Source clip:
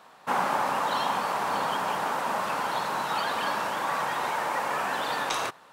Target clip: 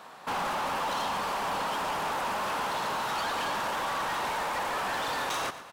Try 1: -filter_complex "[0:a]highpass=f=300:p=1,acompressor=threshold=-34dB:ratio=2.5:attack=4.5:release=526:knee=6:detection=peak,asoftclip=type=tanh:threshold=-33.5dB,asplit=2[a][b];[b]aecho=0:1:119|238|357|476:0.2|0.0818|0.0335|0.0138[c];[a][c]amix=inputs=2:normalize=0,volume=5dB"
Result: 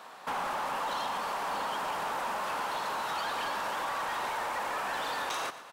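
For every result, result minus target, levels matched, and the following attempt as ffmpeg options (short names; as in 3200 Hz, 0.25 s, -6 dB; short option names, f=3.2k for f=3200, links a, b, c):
compressor: peak gain reduction +6 dB; 250 Hz band -3.0 dB
-filter_complex "[0:a]highpass=f=300:p=1,acompressor=threshold=-23.5dB:ratio=2.5:attack=4.5:release=526:knee=6:detection=peak,asoftclip=type=tanh:threshold=-33.5dB,asplit=2[a][b];[b]aecho=0:1:119|238|357|476:0.2|0.0818|0.0335|0.0138[c];[a][c]amix=inputs=2:normalize=0,volume=5dB"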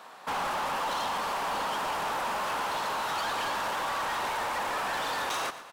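250 Hz band -2.5 dB
-filter_complex "[0:a]acompressor=threshold=-23.5dB:ratio=2.5:attack=4.5:release=526:knee=6:detection=peak,asoftclip=type=tanh:threshold=-33.5dB,asplit=2[a][b];[b]aecho=0:1:119|238|357|476:0.2|0.0818|0.0335|0.0138[c];[a][c]amix=inputs=2:normalize=0,volume=5dB"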